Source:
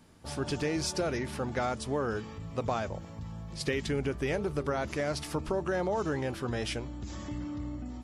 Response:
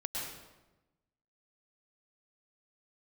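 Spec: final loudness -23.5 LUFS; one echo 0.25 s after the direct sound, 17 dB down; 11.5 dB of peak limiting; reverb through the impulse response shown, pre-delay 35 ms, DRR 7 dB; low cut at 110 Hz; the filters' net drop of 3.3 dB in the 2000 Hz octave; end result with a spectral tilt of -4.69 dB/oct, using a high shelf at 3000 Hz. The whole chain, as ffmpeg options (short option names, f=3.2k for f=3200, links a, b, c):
-filter_complex "[0:a]highpass=110,equalizer=f=2k:t=o:g=-6,highshelf=f=3k:g=5,alimiter=level_in=4dB:limit=-24dB:level=0:latency=1,volume=-4dB,aecho=1:1:250:0.141,asplit=2[a][b];[1:a]atrim=start_sample=2205,adelay=35[c];[b][c]afir=irnorm=-1:irlink=0,volume=-9.5dB[d];[a][d]amix=inputs=2:normalize=0,volume=14dB"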